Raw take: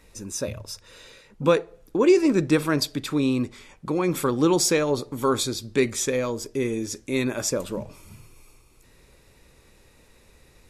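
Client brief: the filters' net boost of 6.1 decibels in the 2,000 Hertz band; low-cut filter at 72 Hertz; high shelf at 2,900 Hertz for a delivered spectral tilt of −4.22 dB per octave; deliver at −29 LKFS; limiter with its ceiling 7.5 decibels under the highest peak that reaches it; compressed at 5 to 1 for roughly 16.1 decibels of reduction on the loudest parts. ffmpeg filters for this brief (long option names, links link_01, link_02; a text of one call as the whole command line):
ffmpeg -i in.wav -af "highpass=72,equalizer=frequency=2000:width_type=o:gain=5,highshelf=frequency=2900:gain=6.5,acompressor=threshold=-31dB:ratio=5,volume=7dB,alimiter=limit=-18dB:level=0:latency=1" out.wav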